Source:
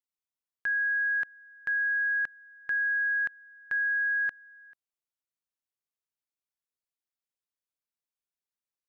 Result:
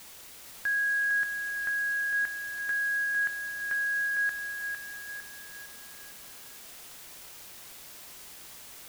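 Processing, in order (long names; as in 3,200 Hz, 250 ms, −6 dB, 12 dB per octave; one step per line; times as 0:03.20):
bit-depth reduction 8 bits, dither triangular
feedback echo at a low word length 455 ms, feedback 55%, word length 9 bits, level −6.5 dB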